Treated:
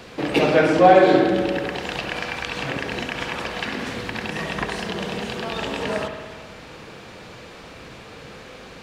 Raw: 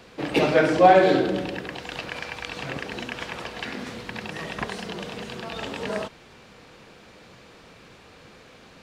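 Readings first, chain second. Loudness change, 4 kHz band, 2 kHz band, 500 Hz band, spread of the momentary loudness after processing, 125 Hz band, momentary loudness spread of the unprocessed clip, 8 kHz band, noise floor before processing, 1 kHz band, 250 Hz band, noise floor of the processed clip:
+3.0 dB, +4.5 dB, +4.0 dB, +3.0 dB, 25 LU, +4.0 dB, 17 LU, +4.0 dB, -50 dBFS, +2.0 dB, +4.5 dB, -42 dBFS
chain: in parallel at +2.5 dB: compressor, threshold -35 dBFS, peak gain reduction 23 dB; on the sum: spring tank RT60 1.7 s, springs 57 ms, chirp 75 ms, DRR 5 dB

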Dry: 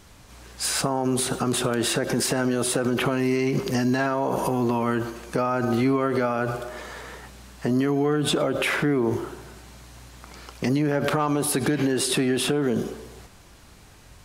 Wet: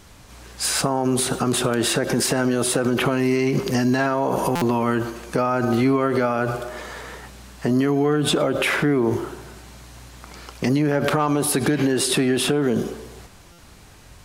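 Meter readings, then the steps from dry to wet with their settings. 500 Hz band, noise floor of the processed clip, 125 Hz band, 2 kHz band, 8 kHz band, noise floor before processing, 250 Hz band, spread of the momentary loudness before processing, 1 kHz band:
+3.0 dB, -46 dBFS, +3.0 dB, +3.0 dB, +3.0 dB, -49 dBFS, +3.0 dB, 11 LU, +3.0 dB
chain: stuck buffer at 4.55/13.52, samples 256, times 10; gain +3 dB

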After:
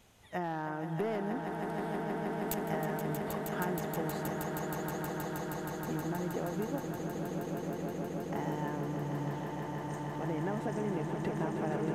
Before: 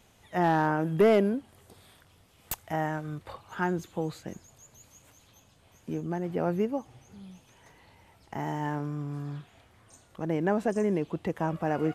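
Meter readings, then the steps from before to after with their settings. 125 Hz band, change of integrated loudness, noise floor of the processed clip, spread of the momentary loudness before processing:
-2.5 dB, -6.5 dB, -40 dBFS, 18 LU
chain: compressor 6:1, threshold -31 dBFS, peak gain reduction 12.5 dB; swelling echo 0.158 s, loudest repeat 8, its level -7.5 dB; gain -2 dB

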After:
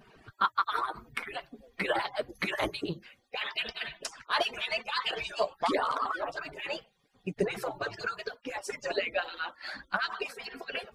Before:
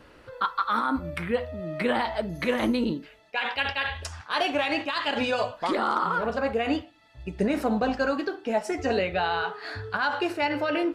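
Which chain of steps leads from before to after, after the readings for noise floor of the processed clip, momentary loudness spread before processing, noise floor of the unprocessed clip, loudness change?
-70 dBFS, 6 LU, -53 dBFS, -6.0 dB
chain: median-filter separation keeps percussive

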